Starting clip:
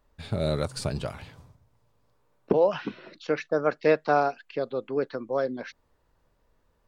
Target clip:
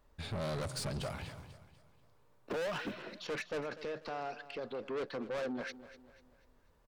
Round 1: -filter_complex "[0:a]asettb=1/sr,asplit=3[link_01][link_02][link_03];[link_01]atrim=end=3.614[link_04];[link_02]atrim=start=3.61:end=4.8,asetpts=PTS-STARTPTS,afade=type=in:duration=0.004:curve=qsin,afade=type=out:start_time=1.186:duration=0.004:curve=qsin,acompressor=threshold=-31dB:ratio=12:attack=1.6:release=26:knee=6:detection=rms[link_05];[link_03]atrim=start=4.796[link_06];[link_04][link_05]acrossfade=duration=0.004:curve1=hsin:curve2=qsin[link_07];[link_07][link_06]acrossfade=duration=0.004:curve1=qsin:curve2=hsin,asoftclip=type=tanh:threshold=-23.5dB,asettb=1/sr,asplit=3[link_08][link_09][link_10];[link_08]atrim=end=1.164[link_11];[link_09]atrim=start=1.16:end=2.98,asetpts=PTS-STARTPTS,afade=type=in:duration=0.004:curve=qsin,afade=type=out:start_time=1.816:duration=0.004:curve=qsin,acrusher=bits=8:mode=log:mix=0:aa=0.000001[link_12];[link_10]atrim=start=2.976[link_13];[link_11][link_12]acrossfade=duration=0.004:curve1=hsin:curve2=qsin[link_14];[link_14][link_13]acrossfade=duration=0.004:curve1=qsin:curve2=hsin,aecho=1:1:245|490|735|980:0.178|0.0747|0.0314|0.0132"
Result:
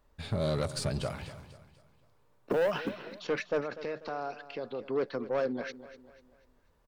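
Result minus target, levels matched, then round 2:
soft clipping: distortion −6 dB
-filter_complex "[0:a]asettb=1/sr,asplit=3[link_01][link_02][link_03];[link_01]atrim=end=3.614[link_04];[link_02]atrim=start=3.61:end=4.8,asetpts=PTS-STARTPTS,afade=type=in:duration=0.004:curve=qsin,afade=type=out:start_time=1.186:duration=0.004:curve=qsin,acompressor=threshold=-31dB:ratio=12:attack=1.6:release=26:knee=6:detection=rms[link_05];[link_03]atrim=start=4.796[link_06];[link_04][link_05]acrossfade=duration=0.004:curve1=hsin:curve2=qsin[link_07];[link_07][link_06]acrossfade=duration=0.004:curve1=qsin:curve2=hsin,asoftclip=type=tanh:threshold=-34.5dB,asettb=1/sr,asplit=3[link_08][link_09][link_10];[link_08]atrim=end=1.164[link_11];[link_09]atrim=start=1.16:end=2.98,asetpts=PTS-STARTPTS,afade=type=in:duration=0.004:curve=qsin,afade=type=out:start_time=1.816:duration=0.004:curve=qsin,acrusher=bits=8:mode=log:mix=0:aa=0.000001[link_12];[link_10]atrim=start=2.976[link_13];[link_11][link_12]acrossfade=duration=0.004:curve1=hsin:curve2=qsin[link_14];[link_14][link_13]acrossfade=duration=0.004:curve1=qsin:curve2=hsin,aecho=1:1:245|490|735|980:0.178|0.0747|0.0314|0.0132"

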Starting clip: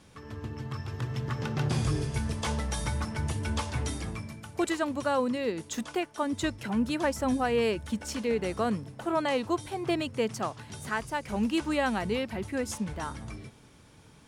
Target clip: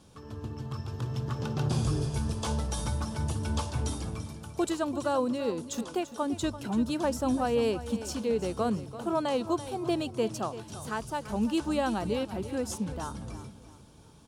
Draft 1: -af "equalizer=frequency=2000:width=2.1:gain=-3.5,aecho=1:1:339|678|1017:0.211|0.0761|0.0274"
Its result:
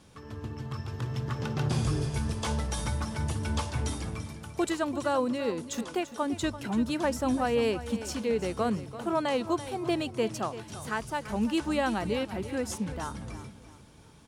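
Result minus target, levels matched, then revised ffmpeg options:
2,000 Hz band +4.5 dB
-af "equalizer=frequency=2000:width=2.1:gain=-12,aecho=1:1:339|678|1017:0.211|0.0761|0.0274"

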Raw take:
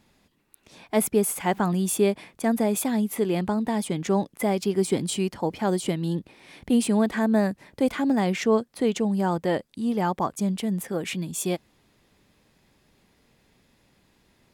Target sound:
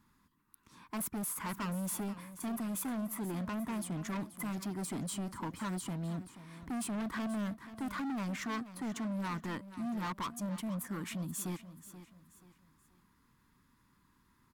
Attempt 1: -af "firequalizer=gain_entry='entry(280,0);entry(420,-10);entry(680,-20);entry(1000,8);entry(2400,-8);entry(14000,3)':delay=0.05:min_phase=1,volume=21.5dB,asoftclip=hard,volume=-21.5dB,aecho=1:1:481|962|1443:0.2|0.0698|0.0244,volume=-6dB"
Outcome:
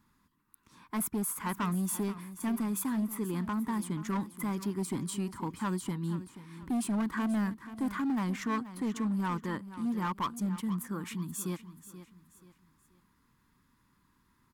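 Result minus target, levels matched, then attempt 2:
gain into a clipping stage and back: distortion −7 dB
-af "firequalizer=gain_entry='entry(280,0);entry(420,-10);entry(680,-20);entry(1000,8);entry(2400,-8);entry(14000,3)':delay=0.05:min_phase=1,volume=29dB,asoftclip=hard,volume=-29dB,aecho=1:1:481|962|1443:0.2|0.0698|0.0244,volume=-6dB"

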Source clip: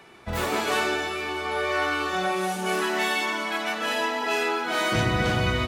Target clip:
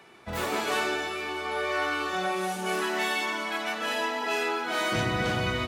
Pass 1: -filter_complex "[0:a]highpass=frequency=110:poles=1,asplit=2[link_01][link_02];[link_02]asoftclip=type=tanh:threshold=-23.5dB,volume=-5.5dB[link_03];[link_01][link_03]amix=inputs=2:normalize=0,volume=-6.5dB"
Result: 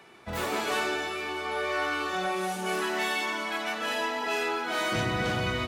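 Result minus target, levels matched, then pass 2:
soft clipping: distortion +17 dB
-filter_complex "[0:a]highpass=frequency=110:poles=1,asplit=2[link_01][link_02];[link_02]asoftclip=type=tanh:threshold=-11.5dB,volume=-5.5dB[link_03];[link_01][link_03]amix=inputs=2:normalize=0,volume=-6.5dB"

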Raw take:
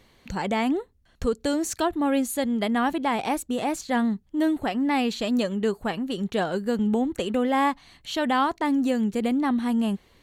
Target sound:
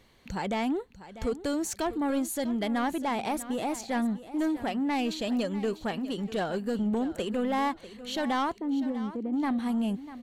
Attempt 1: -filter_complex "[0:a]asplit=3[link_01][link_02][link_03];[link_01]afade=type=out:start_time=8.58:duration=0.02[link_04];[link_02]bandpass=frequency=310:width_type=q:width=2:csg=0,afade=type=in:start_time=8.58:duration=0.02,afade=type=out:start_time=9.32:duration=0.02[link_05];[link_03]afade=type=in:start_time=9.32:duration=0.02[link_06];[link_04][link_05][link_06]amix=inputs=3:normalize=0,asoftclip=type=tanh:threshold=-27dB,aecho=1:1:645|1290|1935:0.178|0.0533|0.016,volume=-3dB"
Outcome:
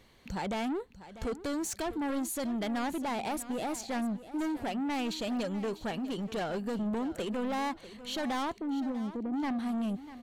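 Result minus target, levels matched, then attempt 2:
soft clipping: distortion +8 dB
-filter_complex "[0:a]asplit=3[link_01][link_02][link_03];[link_01]afade=type=out:start_time=8.58:duration=0.02[link_04];[link_02]bandpass=frequency=310:width_type=q:width=2:csg=0,afade=type=in:start_time=8.58:duration=0.02,afade=type=out:start_time=9.32:duration=0.02[link_05];[link_03]afade=type=in:start_time=9.32:duration=0.02[link_06];[link_04][link_05][link_06]amix=inputs=3:normalize=0,asoftclip=type=tanh:threshold=-19dB,aecho=1:1:645|1290|1935:0.178|0.0533|0.016,volume=-3dB"

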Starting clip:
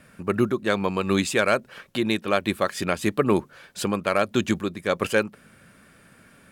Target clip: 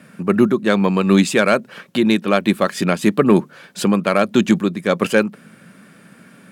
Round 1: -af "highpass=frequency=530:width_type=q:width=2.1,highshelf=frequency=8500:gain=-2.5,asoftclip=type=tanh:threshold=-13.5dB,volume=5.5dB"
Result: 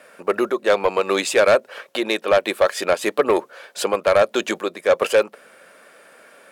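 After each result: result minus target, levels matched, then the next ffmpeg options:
250 Hz band −10.5 dB; soft clipping: distortion +13 dB
-af "highpass=frequency=180:width_type=q:width=2.1,highshelf=frequency=8500:gain=-2.5,asoftclip=type=tanh:threshold=-13.5dB,volume=5.5dB"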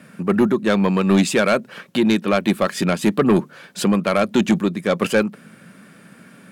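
soft clipping: distortion +13 dB
-af "highpass=frequency=180:width_type=q:width=2.1,highshelf=frequency=8500:gain=-2.5,asoftclip=type=tanh:threshold=-4.5dB,volume=5.5dB"

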